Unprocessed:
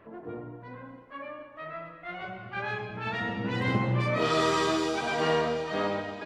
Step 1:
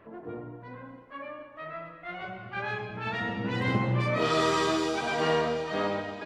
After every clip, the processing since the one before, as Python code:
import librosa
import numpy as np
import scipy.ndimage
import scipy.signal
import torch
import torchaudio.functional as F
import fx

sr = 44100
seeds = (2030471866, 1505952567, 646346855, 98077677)

y = x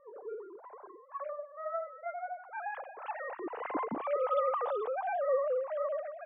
y = fx.sine_speech(x, sr)
y = fx.high_shelf_res(y, sr, hz=1500.0, db=-13.0, q=1.5)
y = F.gain(torch.from_numpy(y), -5.0).numpy()